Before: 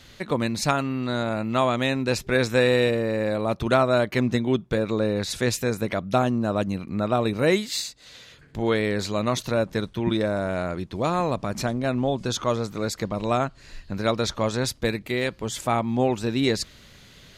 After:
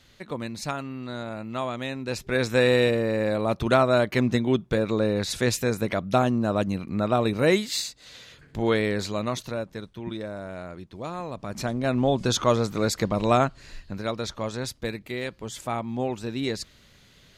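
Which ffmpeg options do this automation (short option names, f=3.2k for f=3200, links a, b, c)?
-af "volume=13dB,afade=t=in:st=2.01:d=0.68:silence=0.398107,afade=t=out:st=8.76:d=0.96:silence=0.316228,afade=t=in:st=11.32:d=0.89:silence=0.223872,afade=t=out:st=13.43:d=0.61:silence=0.354813"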